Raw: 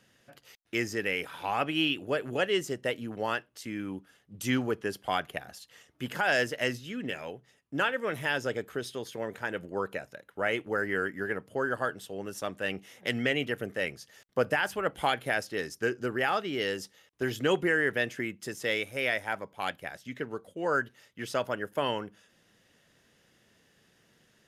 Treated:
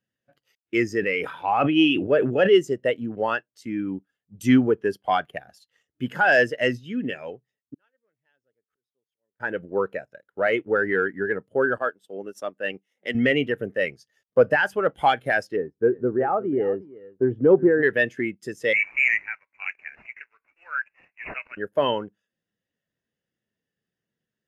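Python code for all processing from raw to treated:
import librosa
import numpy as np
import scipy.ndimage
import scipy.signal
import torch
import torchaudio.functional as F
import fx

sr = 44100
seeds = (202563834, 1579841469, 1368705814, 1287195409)

y = fx.chain(x, sr, fx.high_shelf(hz=4500.0, db=-4.5),
    fx.sustainer(db_per_s=53.0), at=(1.0, 2.55))
y = fx.chain(y, sr, fx.gate_flip(shuts_db=-33.0, range_db=-29),
    fx.auto_swell(attack_ms=112.0), at=(7.74, 9.4))
y = fx.chain(y, sr, fx.highpass(hz=190.0, slope=12),
    fx.transient(attack_db=-3, sustain_db=-7), at=(11.78, 13.15))
y = fx.chain(y, sr, fx.lowpass(hz=1000.0, slope=12),
    fx.echo_single(ms=362, db=-13.0), at=(15.56, 17.83))
y = fx.chain(y, sr, fx.law_mismatch(coded='mu'),
    fx.highpass_res(hz=2500.0, q=1.7),
    fx.resample_bad(factor=8, down='none', up='filtered'), at=(18.73, 21.57))
y = fx.leveller(y, sr, passes=1)
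y = fx.spectral_expand(y, sr, expansion=1.5)
y = y * 10.0 ** (7.0 / 20.0)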